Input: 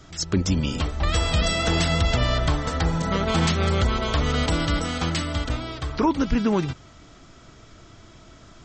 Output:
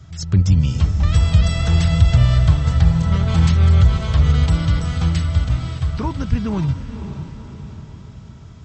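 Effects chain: HPF 59 Hz; resonant low shelf 190 Hz +14 dB, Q 1.5; on a send: diffused feedback echo 0.55 s, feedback 51%, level -10 dB; on the sum: gain -4 dB

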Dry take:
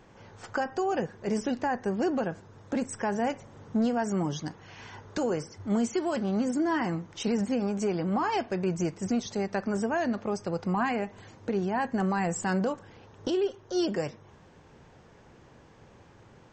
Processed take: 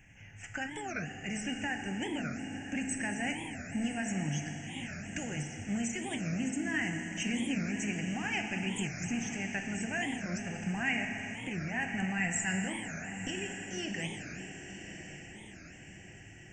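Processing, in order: EQ curve 120 Hz 0 dB, 310 Hz -11 dB, 450 Hz -21 dB, 750 Hz -10 dB, 1100 Hz -24 dB, 1800 Hz +4 dB, 2800 Hz +7 dB, 4000 Hz -30 dB, 6200 Hz +2 dB; diffused feedback echo 1.053 s, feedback 52%, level -10 dB; reverb RT60 3.7 s, pre-delay 4 ms, DRR 3.5 dB; record warp 45 rpm, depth 250 cents

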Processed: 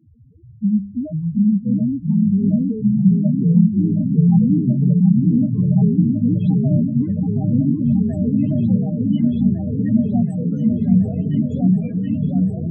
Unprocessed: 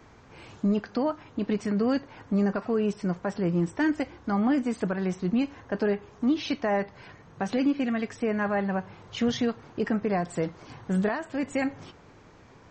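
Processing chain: HPF 45 Hz; notches 50/100/150/200 Hz; loudest bins only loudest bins 1; in parallel at -2.5 dB: compressor, threshold -37 dBFS, peak gain reduction 11.5 dB; on the sum: resonant low shelf 270 Hz +12 dB, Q 1.5; repeats that get brighter 0.727 s, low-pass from 400 Hz, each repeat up 2 oct, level 0 dB; echoes that change speed 0.325 s, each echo -4 st, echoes 3, each echo -6 dB

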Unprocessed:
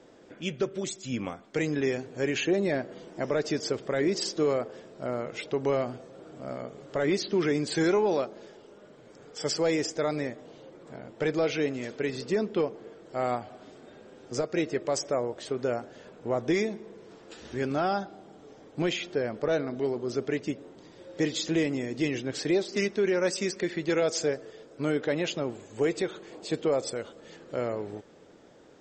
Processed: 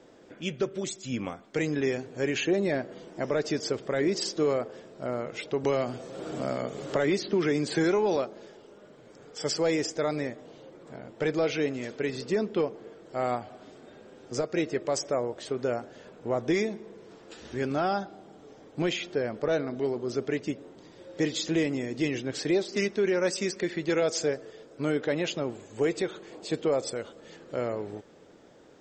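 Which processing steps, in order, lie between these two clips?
5.64–8.16 three-band squash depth 70%

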